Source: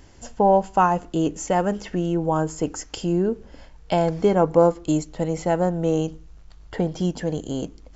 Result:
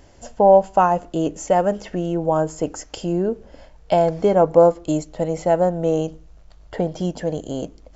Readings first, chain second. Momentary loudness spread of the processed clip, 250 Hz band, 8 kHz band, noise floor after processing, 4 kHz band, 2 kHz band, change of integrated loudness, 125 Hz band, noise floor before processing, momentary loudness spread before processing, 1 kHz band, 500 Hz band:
14 LU, −0.5 dB, can't be measured, −48 dBFS, −1.0 dB, −0.5 dB, +3.0 dB, −1.0 dB, −47 dBFS, 11 LU, +2.5 dB, +4.5 dB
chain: parametric band 610 Hz +8.5 dB 0.62 octaves
level −1 dB

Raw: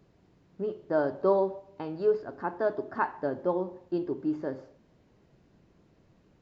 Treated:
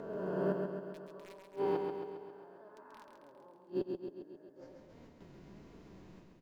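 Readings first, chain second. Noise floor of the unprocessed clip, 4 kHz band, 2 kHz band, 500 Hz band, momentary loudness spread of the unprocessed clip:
−64 dBFS, can't be measured, −13.0 dB, −10.0 dB, 11 LU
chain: peak hold with a rise ahead of every peak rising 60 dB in 2.28 s
noise gate with hold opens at −50 dBFS
upward compression, threshold −46 dBFS
hollow resonant body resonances 290/980/2,100 Hz, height 6 dB, ringing for 75 ms
wrap-around overflow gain 12.5 dB
gate with flip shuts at −21 dBFS, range −31 dB
flanger 1.4 Hz, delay 4.2 ms, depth 1.5 ms, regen +53%
repeating echo 135 ms, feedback 60%, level −5 dB
level +1 dB
IMA ADPCM 176 kbit/s 44,100 Hz

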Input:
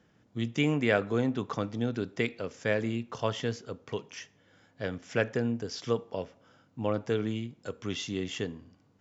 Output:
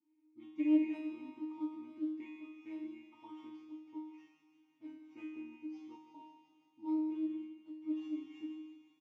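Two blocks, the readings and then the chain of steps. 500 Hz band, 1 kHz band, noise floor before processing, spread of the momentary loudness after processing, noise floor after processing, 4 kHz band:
−19.0 dB, −16.0 dB, −66 dBFS, 18 LU, −74 dBFS, below −20 dB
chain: tuned comb filter 310 Hz, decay 0.89 s, mix 100%
delay with a high-pass on its return 176 ms, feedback 75%, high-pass 3,100 Hz, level −8 dB
in parallel at −5 dB: sample-rate reduction 4,500 Hz, jitter 0%
on the sum: formant filter u
on a send: repeating echo 157 ms, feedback 52%, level −13 dB
on the sum: highs frequency-modulated by the lows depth 0.1 ms
level +12.5 dB

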